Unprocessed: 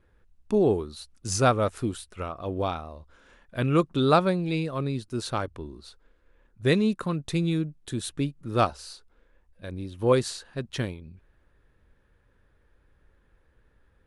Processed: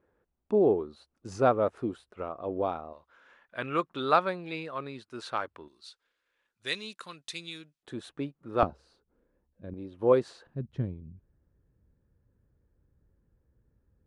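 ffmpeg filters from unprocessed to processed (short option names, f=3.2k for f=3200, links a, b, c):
-af "asetnsamples=n=441:p=0,asendcmd='2.93 bandpass f 1400;5.68 bandpass f 4400;7.83 bandpass f 780;8.63 bandpass f 220;9.74 bandpass f 560;10.47 bandpass f 130',bandpass=f=530:t=q:w=0.73:csg=0"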